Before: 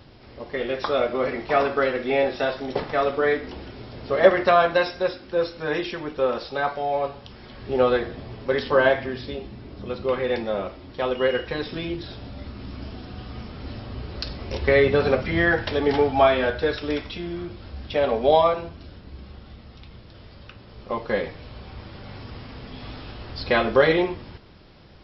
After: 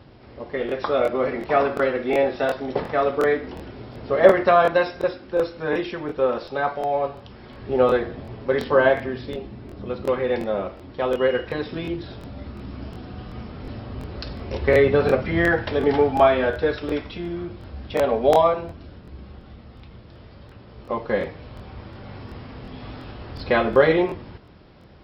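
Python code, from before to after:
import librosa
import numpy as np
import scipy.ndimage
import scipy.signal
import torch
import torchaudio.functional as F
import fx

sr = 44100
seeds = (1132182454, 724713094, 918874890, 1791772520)

y = fx.highpass(x, sr, hz=45.0, slope=6)
y = fx.high_shelf(y, sr, hz=3200.0, db=-11.0)
y = fx.buffer_crackle(y, sr, first_s=0.67, period_s=0.36, block=1024, kind='repeat')
y = F.gain(torch.from_numpy(y), 2.0).numpy()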